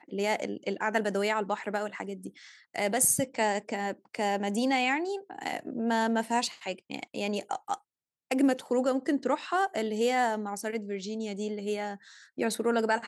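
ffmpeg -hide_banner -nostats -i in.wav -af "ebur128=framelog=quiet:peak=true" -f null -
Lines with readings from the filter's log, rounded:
Integrated loudness:
  I:         -30.0 LUFS
  Threshold: -40.2 LUFS
Loudness range:
  LRA:         2.8 LU
  Threshold: -50.0 LUFS
  LRA low:   -31.6 LUFS
  LRA high:  -28.7 LUFS
True peak:
  Peak:      -10.5 dBFS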